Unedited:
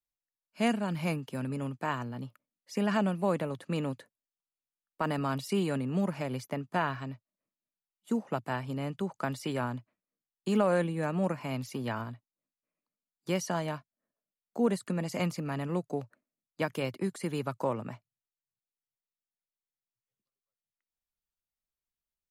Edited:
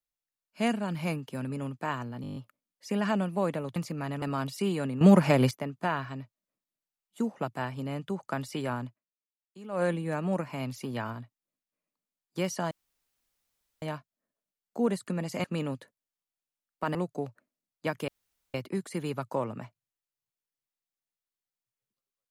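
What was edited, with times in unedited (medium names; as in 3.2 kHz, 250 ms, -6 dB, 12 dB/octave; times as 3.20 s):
2.22 s: stutter 0.02 s, 8 plays
3.62–5.13 s: swap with 15.24–15.70 s
5.92–6.42 s: gain +12 dB
9.77–10.74 s: dip -18 dB, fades 0.14 s
13.62 s: insert room tone 1.11 s
16.83 s: insert room tone 0.46 s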